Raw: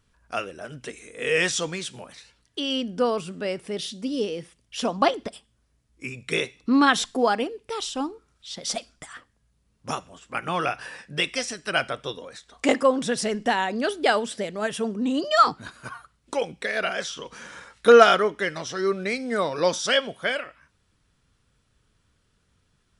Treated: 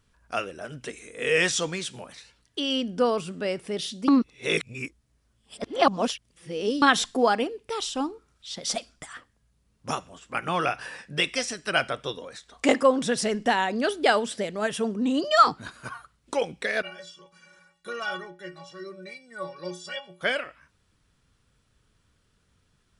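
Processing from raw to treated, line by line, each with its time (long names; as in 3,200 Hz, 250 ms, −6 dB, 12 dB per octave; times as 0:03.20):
0:04.08–0:06.82: reverse
0:16.82–0:20.21: stiff-string resonator 170 Hz, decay 0.37 s, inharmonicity 0.03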